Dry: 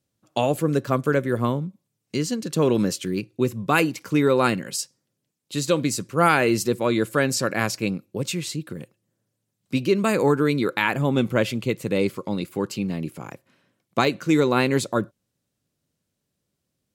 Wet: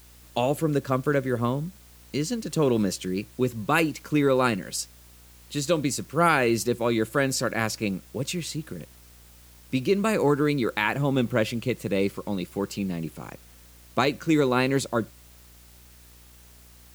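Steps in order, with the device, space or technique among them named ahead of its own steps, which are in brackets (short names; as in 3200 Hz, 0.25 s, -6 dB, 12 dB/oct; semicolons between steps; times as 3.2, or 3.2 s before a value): video cassette with head-switching buzz (buzz 60 Hz, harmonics 35, -51 dBFS -8 dB/oct; white noise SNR 28 dB); gain -2.5 dB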